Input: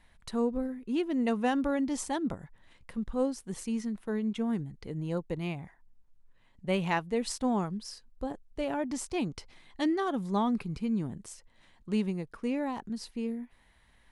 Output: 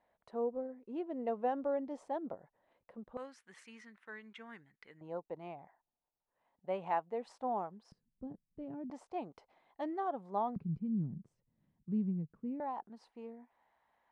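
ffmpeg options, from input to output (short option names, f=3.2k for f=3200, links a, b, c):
-af "asetnsamples=n=441:p=0,asendcmd='3.17 bandpass f 1800;5.01 bandpass f 740;7.92 bandpass f 170;8.9 bandpass f 710;10.56 bandpass f 160;12.6 bandpass f 800',bandpass=f=610:t=q:w=2.3:csg=0"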